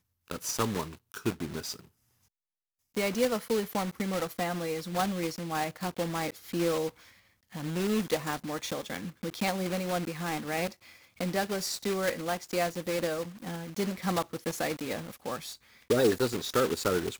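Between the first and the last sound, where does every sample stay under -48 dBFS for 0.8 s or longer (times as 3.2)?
1.85–2.95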